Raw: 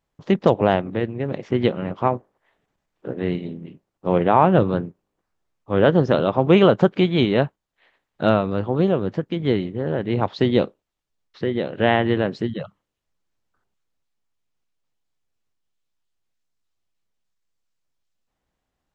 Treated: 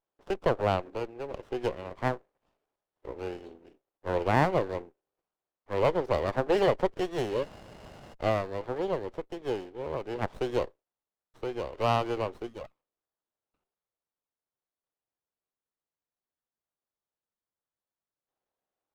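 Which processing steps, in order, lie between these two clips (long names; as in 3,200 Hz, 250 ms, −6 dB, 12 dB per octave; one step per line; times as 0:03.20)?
high-pass filter 370 Hz 24 dB per octave
healed spectral selection 0:07.33–0:08.11, 610–2,900 Hz before
windowed peak hold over 17 samples
level −7 dB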